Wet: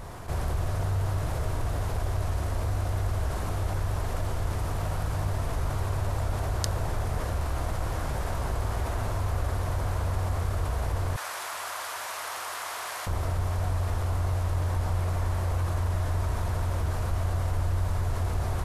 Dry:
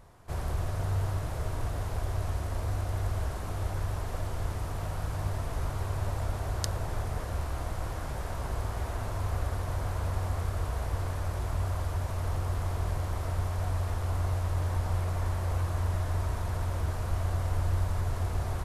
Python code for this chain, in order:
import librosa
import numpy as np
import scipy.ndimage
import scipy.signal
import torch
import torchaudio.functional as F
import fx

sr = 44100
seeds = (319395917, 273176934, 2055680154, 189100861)

y = fx.highpass(x, sr, hz=1200.0, slope=12, at=(11.16, 13.07))
y = fx.env_flatten(y, sr, amount_pct=50)